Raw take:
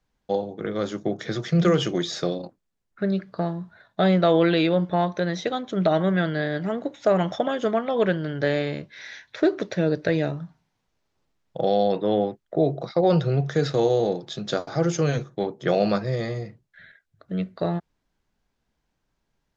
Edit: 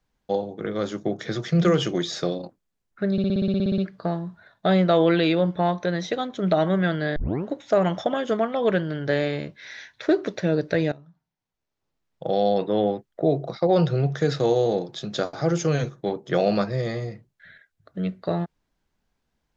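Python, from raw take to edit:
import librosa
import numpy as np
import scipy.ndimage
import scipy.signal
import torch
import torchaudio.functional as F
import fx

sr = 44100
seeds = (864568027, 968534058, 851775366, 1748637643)

y = fx.edit(x, sr, fx.stutter(start_s=3.12, slice_s=0.06, count=12),
    fx.tape_start(start_s=6.5, length_s=0.33),
    fx.fade_in_from(start_s=10.26, length_s=1.54, curve='qua', floor_db=-17.5), tone=tone)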